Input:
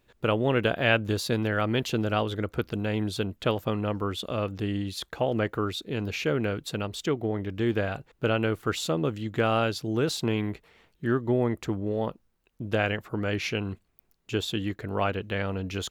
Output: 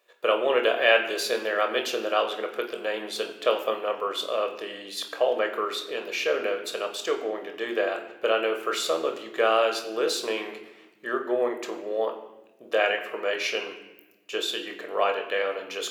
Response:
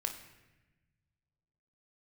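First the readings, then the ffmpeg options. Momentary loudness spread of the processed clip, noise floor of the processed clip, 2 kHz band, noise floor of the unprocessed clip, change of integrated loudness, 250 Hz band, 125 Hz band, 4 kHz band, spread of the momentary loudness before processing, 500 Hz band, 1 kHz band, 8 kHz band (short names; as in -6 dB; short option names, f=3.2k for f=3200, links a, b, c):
10 LU, -54 dBFS, +3.5 dB, -70 dBFS, +1.5 dB, -8.5 dB, under -30 dB, +4.0 dB, 7 LU, +3.5 dB, +3.5 dB, +3.5 dB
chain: -filter_complex "[0:a]highpass=f=380:w=0.5412,highpass=f=380:w=1.3066[a];[1:a]atrim=start_sample=2205,asetrate=48510,aresample=44100[b];[a][b]afir=irnorm=-1:irlink=0,volume=3.5dB"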